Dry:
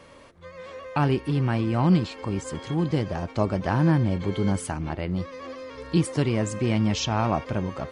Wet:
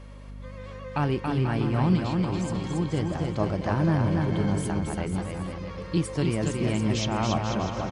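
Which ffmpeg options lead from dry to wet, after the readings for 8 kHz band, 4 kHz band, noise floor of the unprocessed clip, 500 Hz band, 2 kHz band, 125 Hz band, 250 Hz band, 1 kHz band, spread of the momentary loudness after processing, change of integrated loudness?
-1.5 dB, -1.5 dB, -48 dBFS, -1.5 dB, -1.5 dB, -1.0 dB, -1.5 dB, -1.5 dB, 11 LU, -1.5 dB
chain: -af "aeval=exprs='val(0)+0.0112*(sin(2*PI*50*n/s)+sin(2*PI*2*50*n/s)/2+sin(2*PI*3*50*n/s)/3+sin(2*PI*4*50*n/s)/4+sin(2*PI*5*50*n/s)/5)':c=same,aecho=1:1:280|490|647.5|765.6|854.2:0.631|0.398|0.251|0.158|0.1,volume=-3.5dB"

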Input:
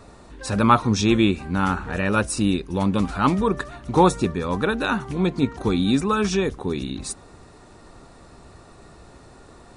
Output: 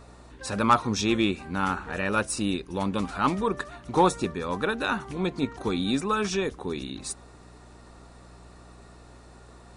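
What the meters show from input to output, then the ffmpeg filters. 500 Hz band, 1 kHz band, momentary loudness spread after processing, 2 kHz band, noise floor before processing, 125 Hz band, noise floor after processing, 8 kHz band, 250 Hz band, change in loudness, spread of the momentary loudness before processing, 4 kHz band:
-4.5 dB, -3.5 dB, 11 LU, -3.0 dB, -48 dBFS, -9.0 dB, -50 dBFS, -3.0 dB, -7.0 dB, -5.5 dB, 10 LU, -3.0 dB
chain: -af "lowshelf=f=210:g=-9,aeval=exprs='val(0)+0.00447*(sin(2*PI*60*n/s)+sin(2*PI*2*60*n/s)/2+sin(2*PI*3*60*n/s)/3+sin(2*PI*4*60*n/s)/4+sin(2*PI*5*60*n/s)/5)':c=same,aeval=exprs='0.794*(cos(1*acos(clip(val(0)/0.794,-1,1)))-cos(1*PI/2))+0.0891*(cos(4*acos(clip(val(0)/0.794,-1,1)))-cos(4*PI/2))+0.0562*(cos(6*acos(clip(val(0)/0.794,-1,1)))-cos(6*PI/2))':c=same,volume=-3dB"

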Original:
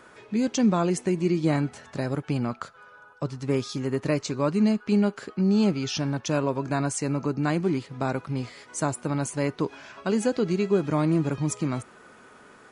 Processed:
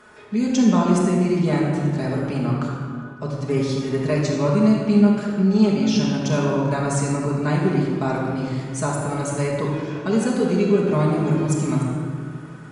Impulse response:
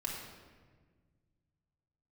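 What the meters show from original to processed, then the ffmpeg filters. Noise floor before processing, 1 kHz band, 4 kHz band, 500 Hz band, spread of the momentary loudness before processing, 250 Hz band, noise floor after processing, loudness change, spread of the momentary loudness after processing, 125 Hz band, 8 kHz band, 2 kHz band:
-52 dBFS, +5.0 dB, +3.5 dB, +5.0 dB, 9 LU, +6.0 dB, -36 dBFS, +5.5 dB, 10 LU, +7.0 dB, +2.5 dB, +4.5 dB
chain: -filter_complex "[1:a]atrim=start_sample=2205,asetrate=29988,aresample=44100[a];[0:a][a]afir=irnorm=-1:irlink=0"

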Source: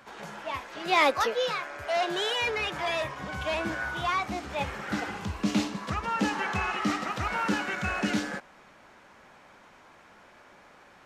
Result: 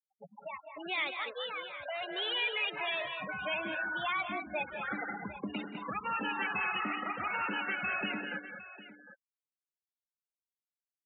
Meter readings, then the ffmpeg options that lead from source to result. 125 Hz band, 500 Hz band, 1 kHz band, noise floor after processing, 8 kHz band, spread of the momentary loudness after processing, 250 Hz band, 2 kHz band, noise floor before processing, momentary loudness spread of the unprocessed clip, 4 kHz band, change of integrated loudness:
-14.5 dB, -9.5 dB, -7.5 dB, under -85 dBFS, under -35 dB, 12 LU, -10.5 dB, -3.0 dB, -55 dBFS, 8 LU, -4.0 dB, -5.5 dB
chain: -filter_complex "[0:a]afftfilt=real='re*gte(hypot(re,im),0.0447)':imag='im*gte(hypot(re,im),0.0447)':win_size=1024:overlap=0.75,afftdn=nr=23:nf=-41,highshelf=f=2.1k:g=9.5,aresample=8000,aresample=44100,acrossover=split=2900[a][b];[a]acompressor=threshold=-41dB:ratio=6[c];[c][b]amix=inputs=2:normalize=0,acrossover=split=180 2700:gain=0.1 1 0.1[d][e][f];[d][e][f]amix=inputs=3:normalize=0,dynaudnorm=f=500:g=11:m=6dB,aecho=1:1:178|204|756:0.178|0.398|0.178"

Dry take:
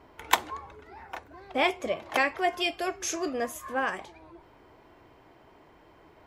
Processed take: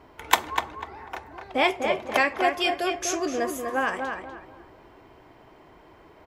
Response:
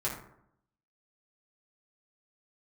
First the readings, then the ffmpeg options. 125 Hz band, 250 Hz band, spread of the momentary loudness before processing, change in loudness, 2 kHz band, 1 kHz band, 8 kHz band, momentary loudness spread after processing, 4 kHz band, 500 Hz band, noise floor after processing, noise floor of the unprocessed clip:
+4.5 dB, +4.5 dB, 16 LU, +3.5 dB, +4.0 dB, +4.0 dB, +3.0 dB, 16 LU, +3.5 dB, +4.5 dB, -53 dBFS, -57 dBFS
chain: -filter_complex "[0:a]asplit=2[a][b];[b]adelay=247,lowpass=f=2.5k:p=1,volume=-5dB,asplit=2[c][d];[d]adelay=247,lowpass=f=2.5k:p=1,volume=0.29,asplit=2[e][f];[f]adelay=247,lowpass=f=2.5k:p=1,volume=0.29,asplit=2[g][h];[h]adelay=247,lowpass=f=2.5k:p=1,volume=0.29[i];[a][c][e][g][i]amix=inputs=5:normalize=0,asplit=2[j][k];[1:a]atrim=start_sample=2205,adelay=24[l];[k][l]afir=irnorm=-1:irlink=0,volume=-24.5dB[m];[j][m]amix=inputs=2:normalize=0,volume=3dB"

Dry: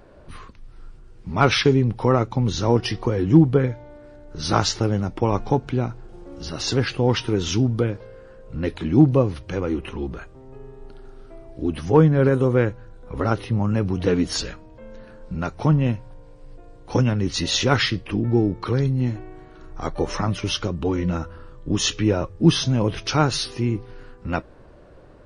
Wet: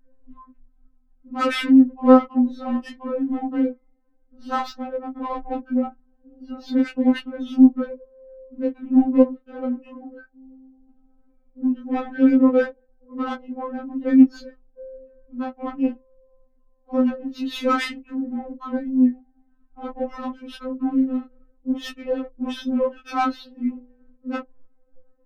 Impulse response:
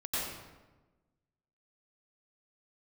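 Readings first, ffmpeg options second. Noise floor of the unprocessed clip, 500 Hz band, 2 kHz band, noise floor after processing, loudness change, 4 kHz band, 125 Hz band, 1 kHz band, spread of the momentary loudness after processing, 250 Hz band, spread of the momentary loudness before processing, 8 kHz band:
-46 dBFS, -3.0 dB, -4.5 dB, -61 dBFS, -0.5 dB, -11.0 dB, under -30 dB, -0.5 dB, 18 LU, +3.5 dB, 14 LU, under -15 dB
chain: -af "afftdn=nr=17:nf=-34,equalizer=f=160:t=o:w=0.67:g=10,equalizer=f=400:t=o:w=0.67:g=-4,equalizer=f=1.6k:t=o:w=0.67:g=3,flanger=delay=15:depth=6.8:speed=0.14,adynamicsmooth=sensitivity=1:basefreq=1.1k,afftfilt=real='re*3.46*eq(mod(b,12),0)':imag='im*3.46*eq(mod(b,12),0)':win_size=2048:overlap=0.75,volume=4.5dB"

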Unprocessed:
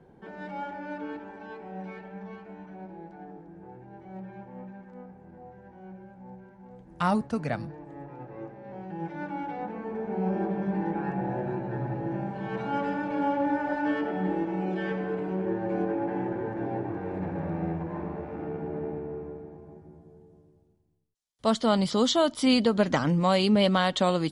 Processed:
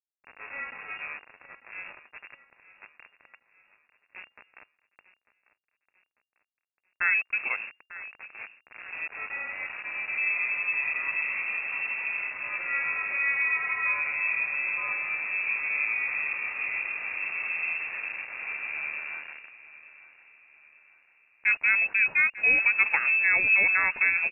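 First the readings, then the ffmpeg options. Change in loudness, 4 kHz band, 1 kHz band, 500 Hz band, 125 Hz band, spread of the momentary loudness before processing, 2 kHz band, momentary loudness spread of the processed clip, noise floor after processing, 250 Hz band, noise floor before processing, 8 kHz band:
+3.0 dB, under -15 dB, -8.5 dB, -20.0 dB, under -25 dB, 22 LU, +15.0 dB, 20 LU, -84 dBFS, under -25 dB, -55 dBFS, n/a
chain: -af "aeval=exprs='val(0)*gte(abs(val(0)),0.0178)':c=same,lowpass=f=2.4k:t=q:w=0.5098,lowpass=f=2.4k:t=q:w=0.6013,lowpass=f=2.4k:t=q:w=0.9,lowpass=f=2.4k:t=q:w=2.563,afreqshift=-2800,aecho=1:1:896|1792|2688|3584:0.141|0.0664|0.0312|0.0147"

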